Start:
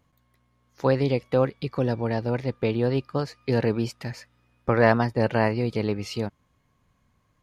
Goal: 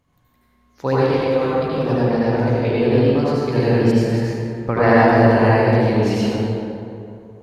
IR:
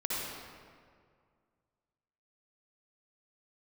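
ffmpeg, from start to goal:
-filter_complex "[0:a]asettb=1/sr,asplit=3[s0][s1][s2];[s0]atrim=end=1.024[s3];[s1]atrim=start=1.02:end=1.45,asetpts=PTS-STARTPTS,afade=t=in:d=0.004:c=qsin,afade=t=out:st=0.426:d=0.004:c=qsin,highpass=f=610:p=1[s4];[s2]atrim=start=1.446[s5];[s3][s4]acrossfade=d=0.004:c1=hsin:c2=qsin[s6];[s6][s5]acrossfade=d=0.004:c1=qsin:c2=hsin[s7];[1:a]atrim=start_sample=2205,asetrate=33516,aresample=44100[s8];[s7][s8]afir=irnorm=-1:irlink=0"

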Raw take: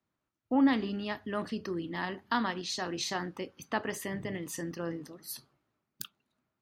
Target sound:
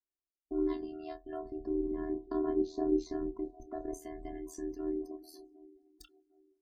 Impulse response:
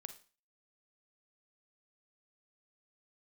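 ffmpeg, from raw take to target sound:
-filter_complex "[0:a]equalizer=f=2600:t=o:w=2.5:g=-13.5,acrossover=split=7200[s0][s1];[s1]acompressor=threshold=0.00178:ratio=4:attack=1:release=60[s2];[s0][s2]amix=inputs=2:normalize=0,asettb=1/sr,asplit=3[s3][s4][s5];[s3]atrim=end=1.454[s6];[s4]atrim=start=1.45:end=3.94,asetpts=PTS-STARTPTS,afade=t=in:d=0.004:c=qsin,afade=t=out:st=2.486:d=0.004:c=qsin,tiltshelf=f=970:g=8.5[s7];[s5]atrim=start=3.936[s8];[s6][s7]acrossfade=d=0.004:c1=hsin:c2=qsin[s9];[s9][s8]acrossfade=d=0.004:c1=qsin:c2=hsin,alimiter=limit=0.0668:level=0:latency=1:release=47,afftfilt=real='hypot(re,im)*cos(PI*b)':imag='0':win_size=512:overlap=0.75,acrossover=split=490|3000[s10][s11][s12];[s11]acompressor=threshold=0.00158:ratio=2[s13];[s10][s13][s12]amix=inputs=3:normalize=0,aeval=exprs='val(0)*sin(2*PI*39*n/s)':c=same,asplit=2[s14][s15];[s15]adelay=29,volume=0.299[s16];[s14][s16]amix=inputs=2:normalize=0,aecho=1:1:754|1508|2262|3016:0.106|0.0551|0.0286|0.0149,afftdn=nr=23:nf=-62,aphaser=in_gain=1:out_gain=1:delay=1.6:decay=0.43:speed=0.38:type=sinusoidal,volume=1.78"

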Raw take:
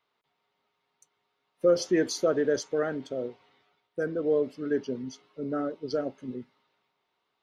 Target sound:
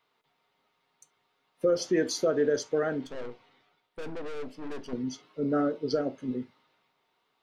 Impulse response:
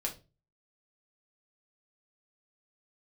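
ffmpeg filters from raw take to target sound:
-filter_complex "[0:a]alimiter=limit=0.0944:level=0:latency=1:release=428,asettb=1/sr,asplit=3[s0][s1][s2];[s0]atrim=end=3.044[s3];[s1]atrim=start=3.04:end=4.93,asetpts=PTS-STARTPTS,afade=t=in:d=0.004:c=qsin,afade=t=out:st=1.886:d=0.004:c=qsin,aeval=exprs='(tanh(112*val(0)+0.6)-tanh(0.6))/112':c=same[s4];[s2]atrim=start=4.926[s5];[s3][s4]acrossfade=d=0.004:c1=hsin:c2=qsin[s6];[s6][s5]acrossfade=d=0.004:c1=qsin:c2=hsin,asplit=2[s7][s8];[1:a]atrim=start_sample=2205,atrim=end_sample=3528[s9];[s8][s9]afir=irnorm=-1:irlink=0,volume=0.398[s10];[s7][s10]amix=inputs=2:normalize=0,volume=1.12"

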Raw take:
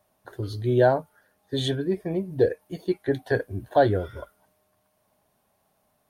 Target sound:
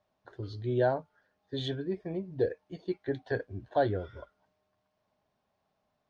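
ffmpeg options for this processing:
-af "lowpass=f=5600:w=0.5412,lowpass=f=5600:w=1.3066,volume=0.398"

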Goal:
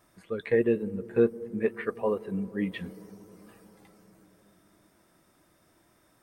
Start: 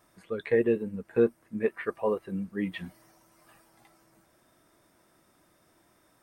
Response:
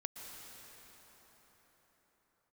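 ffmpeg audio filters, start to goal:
-filter_complex "[0:a]asplit=2[s0][s1];[1:a]atrim=start_sample=2205,lowpass=f=1100:w=0.5412,lowpass=f=1100:w=1.3066,lowshelf=f=290:g=8.5[s2];[s1][s2]afir=irnorm=-1:irlink=0,volume=0.2[s3];[s0][s3]amix=inputs=2:normalize=0"

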